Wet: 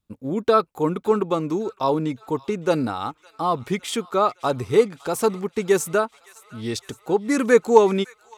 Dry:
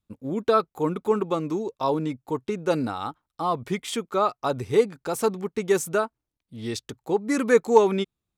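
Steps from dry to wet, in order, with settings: feedback echo behind a high-pass 561 ms, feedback 65%, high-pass 1.4 kHz, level -19.5 dB; trim +3 dB

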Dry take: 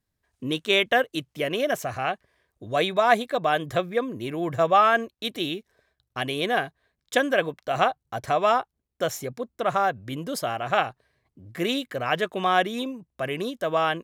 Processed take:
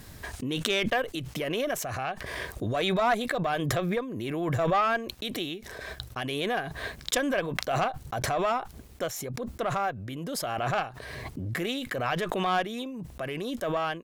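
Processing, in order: valve stage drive 11 dB, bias 0.4; swell ahead of each attack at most 21 dB/s; trim -4.5 dB

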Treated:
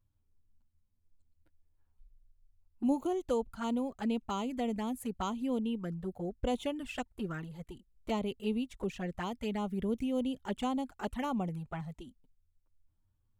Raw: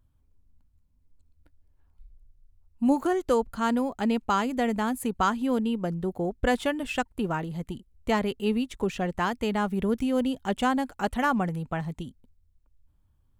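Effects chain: touch-sensitive flanger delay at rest 10.1 ms, full sweep at -22.5 dBFS; trim -6.5 dB

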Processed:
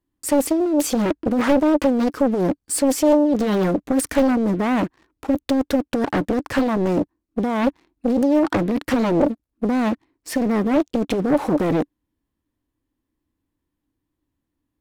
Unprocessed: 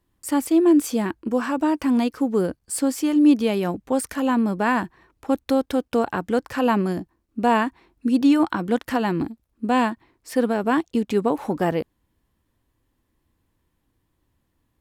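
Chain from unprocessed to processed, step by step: compressor with a negative ratio -23 dBFS, ratio -1; waveshaping leveller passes 3; peaking EQ 290 Hz +10.5 dB 0.45 oct; loudspeaker Doppler distortion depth 0.89 ms; trim -7.5 dB

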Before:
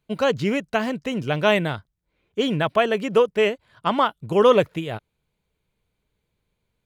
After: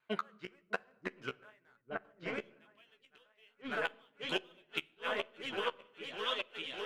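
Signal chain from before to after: dynamic bell 370 Hz, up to +5 dB, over -29 dBFS, Q 2; band-pass sweep 1.5 kHz -> 3.3 kHz, 2.34–2.87 s; in parallel at -10.5 dB: wavefolder -37 dBFS; on the sum: delay with an opening low-pass 604 ms, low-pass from 400 Hz, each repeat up 2 oct, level -6 dB; inverted gate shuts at -29 dBFS, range -41 dB; flange 1.1 Hz, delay 7.3 ms, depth 9.5 ms, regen +15%; vibrato 1 Hz 18 cents; on a send at -23 dB: reverberation RT60 0.95 s, pre-delay 16 ms; on the sum: random flutter of the level, depth 60%; trim +14 dB

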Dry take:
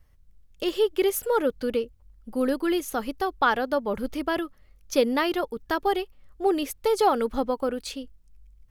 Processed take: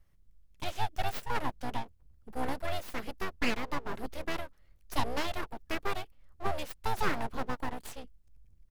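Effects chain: harmony voices -5 st -9 dB; full-wave rectifier; trim -6.5 dB

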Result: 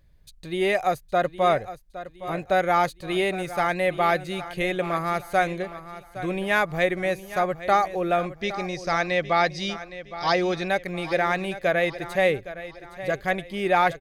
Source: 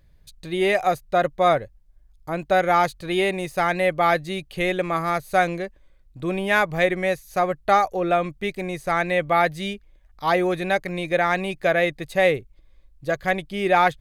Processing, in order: 8.35–10.68 s: resonant low-pass 5.3 kHz, resonance Q 7.9; feedback delay 814 ms, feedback 40%, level -14 dB; trim -2.5 dB

